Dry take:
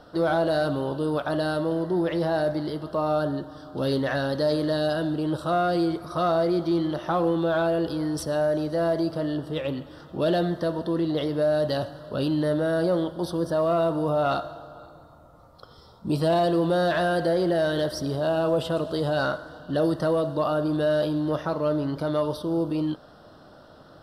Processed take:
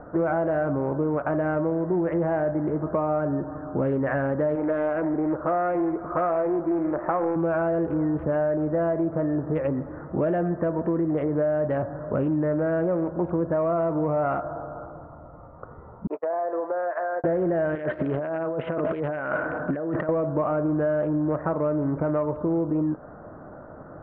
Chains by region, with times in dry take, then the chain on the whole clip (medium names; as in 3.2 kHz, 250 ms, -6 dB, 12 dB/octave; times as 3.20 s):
4.55–7.36 s: peaking EQ 120 Hz -11.5 dB 1.4 oct + loudspeaker Doppler distortion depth 0.26 ms
16.07–17.24 s: gate -24 dBFS, range -44 dB + high-pass 480 Hz 24 dB/octave + compression 8:1, threshold -30 dBFS
17.75–20.09 s: frequency weighting D + compressor with a negative ratio -32 dBFS
whole clip: local Wiener filter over 15 samples; compression 5:1, threshold -30 dBFS; steep low-pass 2.3 kHz 48 dB/octave; trim +8 dB